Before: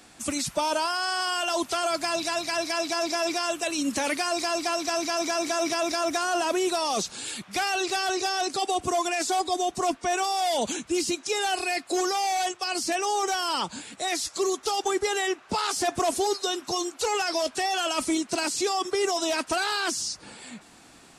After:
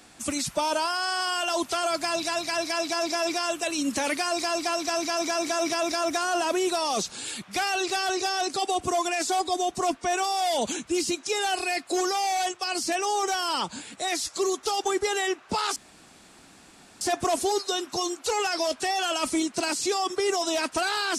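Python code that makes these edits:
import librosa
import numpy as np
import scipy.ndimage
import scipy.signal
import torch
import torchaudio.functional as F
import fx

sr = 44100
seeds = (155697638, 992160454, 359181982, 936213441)

y = fx.edit(x, sr, fx.insert_room_tone(at_s=15.76, length_s=1.25), tone=tone)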